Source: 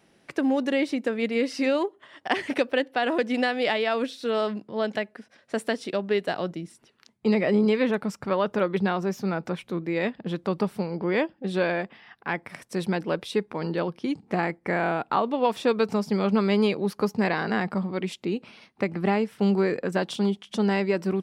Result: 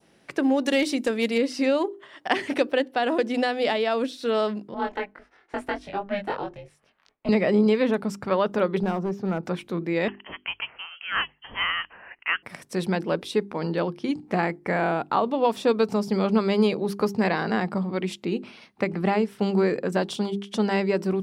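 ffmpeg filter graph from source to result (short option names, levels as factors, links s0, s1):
-filter_complex "[0:a]asettb=1/sr,asplit=3[s0][s1][s2];[s0]atrim=end=0.654[s3];[s1]atrim=start=0.65:end=1.38,asetpts=PTS-STARTPTS,afade=t=in:d=0.004:c=qsin,afade=t=out:st=0.726:d=0.004:c=qsin,highshelf=f=2800:g=11,asoftclip=type=hard:threshold=0.15[s4];[s2]atrim=start=1.376[s5];[s3][s4]acrossfade=d=0.004:c1=hsin:c2=qsin[s6];[s6][s5]acrossfade=d=0.004:c1=qsin:c2=hsin,asettb=1/sr,asplit=3[s7][s8][s9];[s7]atrim=end=4.744[s10];[s8]atrim=start=4.74:end=7.29,asetpts=PTS-STARTPTS,afade=t=in:d=0.004:c=qsin,afade=t=out:st=2.546:d=0.004:c=qsin,acrossover=split=390 2700:gain=0.126 1 0.224[s11][s12][s13];[s11][s12][s13]amix=inputs=3:normalize=0,aeval=exprs='val(0)*sin(2*PI*200*n/s)':c=same,asplit=2[s14][s15];[s15]adelay=21,volume=0.794[s16];[s14][s16]amix=inputs=2:normalize=0,atrim=end_sample=112455[s17];[s9]atrim=start=7.286[s18];[s10][s17]acrossfade=d=0.004:c1=hsin:c2=qsin[s19];[s19][s18]acrossfade=d=0.004:c1=qsin:c2=hsin,asettb=1/sr,asplit=3[s20][s21][s22];[s20]atrim=end=8.834[s23];[s21]atrim=start=8.83:end=9.43,asetpts=PTS-STARTPTS,afade=t=in:d=0.004:c=qsin,afade=t=out:st=0.596:d=0.004:c=qsin,lowpass=f=1100:p=1,aeval=exprs='clip(val(0),-1,0.0708)':c=same[s24];[s22]atrim=start=9.426[s25];[s23][s24]acrossfade=d=0.004:c1=hsin:c2=qsin[s26];[s26][s25]acrossfade=d=0.004:c1=qsin:c2=hsin,asettb=1/sr,asplit=3[s27][s28][s29];[s27]atrim=end=10.084[s30];[s28]atrim=start=10.08:end=12.43,asetpts=PTS-STARTPTS,afade=t=in:d=0.004:c=qsin,afade=t=out:st=2.346:d=0.004:c=qsin,highpass=f=690:w=0.5412,highpass=f=690:w=1.3066,highshelf=f=2300:g=10,lowpass=f=3100:t=q:w=0.5098,lowpass=f=3100:t=q:w=0.6013,lowpass=f=3100:t=q:w=0.9,lowpass=f=3100:t=q:w=2.563,afreqshift=-3600[s31];[s29]atrim=start=12.426[s32];[s30][s31]acrossfade=d=0.004:c1=hsin:c2=qsin[s33];[s33][s32]acrossfade=d=0.004:c1=qsin:c2=hsin,bandreject=f=50:t=h:w=6,bandreject=f=100:t=h:w=6,bandreject=f=150:t=h:w=6,bandreject=f=200:t=h:w=6,bandreject=f=250:t=h:w=6,bandreject=f=300:t=h:w=6,bandreject=f=350:t=h:w=6,bandreject=f=400:t=h:w=6,adynamicequalizer=threshold=0.00891:dfrequency=2000:dqfactor=1:tfrequency=2000:tqfactor=1:attack=5:release=100:ratio=0.375:range=2.5:mode=cutabove:tftype=bell,volume=1.26"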